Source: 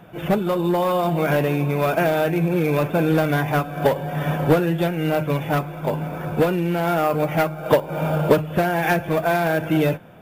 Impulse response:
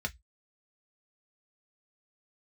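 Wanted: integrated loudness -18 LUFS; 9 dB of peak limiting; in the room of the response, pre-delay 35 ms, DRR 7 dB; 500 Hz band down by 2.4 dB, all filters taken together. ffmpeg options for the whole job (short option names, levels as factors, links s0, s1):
-filter_complex "[0:a]equalizer=f=500:t=o:g=-3,alimiter=limit=0.188:level=0:latency=1,asplit=2[s0][s1];[1:a]atrim=start_sample=2205,adelay=35[s2];[s1][s2]afir=irnorm=-1:irlink=0,volume=0.299[s3];[s0][s3]amix=inputs=2:normalize=0,volume=1.78"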